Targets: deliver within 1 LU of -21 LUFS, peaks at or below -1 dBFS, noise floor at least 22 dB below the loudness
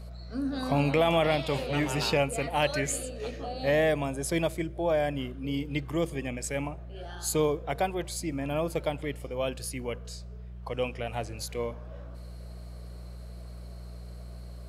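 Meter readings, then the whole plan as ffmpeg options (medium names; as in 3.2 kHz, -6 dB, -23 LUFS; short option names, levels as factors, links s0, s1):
hum 60 Hz; highest harmonic 180 Hz; hum level -40 dBFS; loudness -30.0 LUFS; peak level -12.5 dBFS; loudness target -21.0 LUFS
-> -af "bandreject=f=60:t=h:w=4,bandreject=f=120:t=h:w=4,bandreject=f=180:t=h:w=4"
-af "volume=2.82"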